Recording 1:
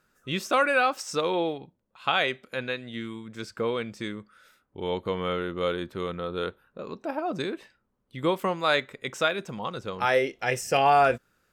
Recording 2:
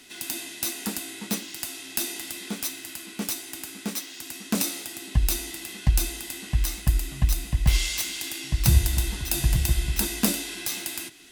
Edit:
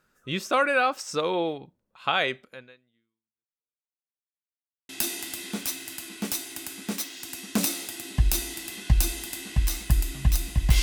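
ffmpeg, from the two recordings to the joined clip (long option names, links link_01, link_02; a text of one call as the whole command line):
ffmpeg -i cue0.wav -i cue1.wav -filter_complex "[0:a]apad=whole_dur=10.82,atrim=end=10.82,asplit=2[link_01][link_02];[link_01]atrim=end=3.89,asetpts=PTS-STARTPTS,afade=type=out:start_time=2.4:duration=1.49:curve=exp[link_03];[link_02]atrim=start=3.89:end=4.89,asetpts=PTS-STARTPTS,volume=0[link_04];[1:a]atrim=start=1.86:end=7.79,asetpts=PTS-STARTPTS,afade=type=in:duration=0.004:curve=hsin[link_05];[link_03][link_04][link_05]concat=n=3:v=0:a=1" out.wav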